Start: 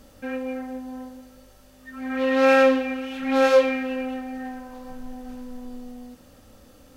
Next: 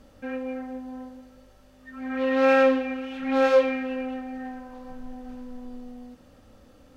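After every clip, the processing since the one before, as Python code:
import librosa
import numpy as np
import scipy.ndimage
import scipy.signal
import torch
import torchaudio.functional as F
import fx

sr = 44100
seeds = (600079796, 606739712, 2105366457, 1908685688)

y = fx.lowpass(x, sr, hz=3300.0, slope=6)
y = F.gain(torch.from_numpy(y), -2.0).numpy()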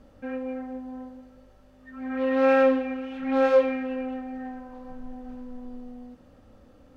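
y = fx.high_shelf(x, sr, hz=2400.0, db=-9.0)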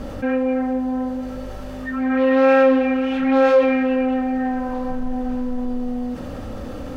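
y = fx.env_flatten(x, sr, amount_pct=50)
y = F.gain(torch.from_numpy(y), 3.5).numpy()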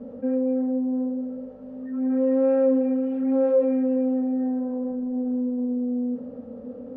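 y = fx.double_bandpass(x, sr, hz=340.0, octaves=0.93)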